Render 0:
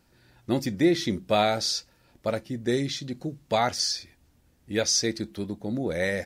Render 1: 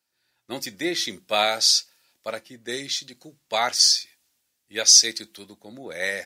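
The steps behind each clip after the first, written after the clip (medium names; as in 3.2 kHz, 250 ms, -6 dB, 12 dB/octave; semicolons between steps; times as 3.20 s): high-pass 810 Hz 6 dB/octave; treble shelf 2.1 kHz +9 dB; three bands expanded up and down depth 40%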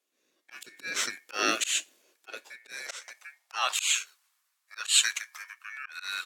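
ring modulator 2 kHz; slow attack 190 ms; high-pass sweep 310 Hz -> 1.1 kHz, 1.80–4.08 s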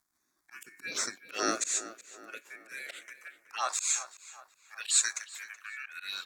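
crackle 130 per s -59 dBFS; touch-sensitive phaser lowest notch 490 Hz, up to 3 kHz, full sweep at -28 dBFS; tape echo 375 ms, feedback 50%, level -13 dB, low-pass 2.9 kHz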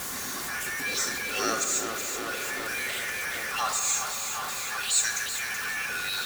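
jump at every zero crossing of -26.5 dBFS; comb of notches 320 Hz; reverberation RT60 3.6 s, pre-delay 4 ms, DRR 6.5 dB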